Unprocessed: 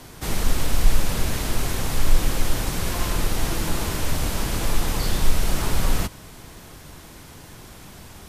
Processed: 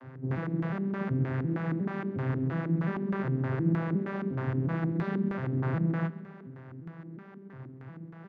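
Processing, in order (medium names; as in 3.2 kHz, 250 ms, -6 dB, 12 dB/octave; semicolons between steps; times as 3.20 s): vocoder on a broken chord major triad, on C3, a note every 358 ms; LFO low-pass square 3.2 Hz 300–1700 Hz; on a send: feedback delay 134 ms, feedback 54%, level -19 dB; on the sum: trim -1.5 dB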